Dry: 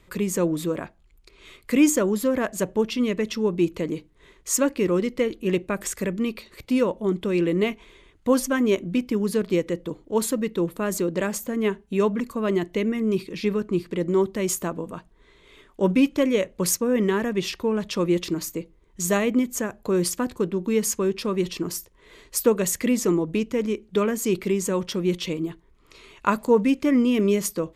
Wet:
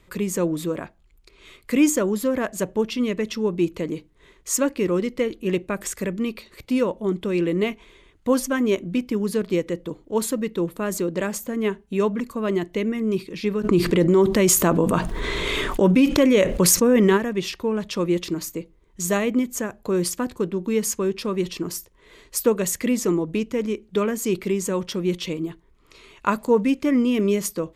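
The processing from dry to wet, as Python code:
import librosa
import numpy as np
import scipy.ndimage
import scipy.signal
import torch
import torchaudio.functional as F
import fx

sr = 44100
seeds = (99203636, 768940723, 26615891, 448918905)

y = fx.env_flatten(x, sr, amount_pct=70, at=(13.63, 17.16), fade=0.02)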